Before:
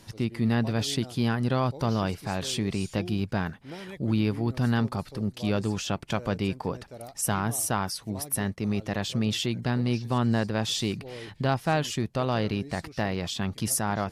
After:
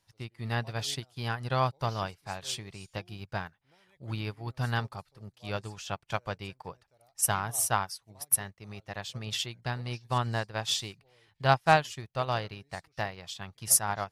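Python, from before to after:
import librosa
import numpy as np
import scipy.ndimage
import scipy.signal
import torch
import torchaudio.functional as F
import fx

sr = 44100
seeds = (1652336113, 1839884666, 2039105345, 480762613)

y = fx.curve_eq(x, sr, hz=(140.0, 230.0, 790.0), db=(0, -10, 4))
y = fx.upward_expand(y, sr, threshold_db=-38.0, expansion=2.5)
y = y * 10.0 ** (3.0 / 20.0)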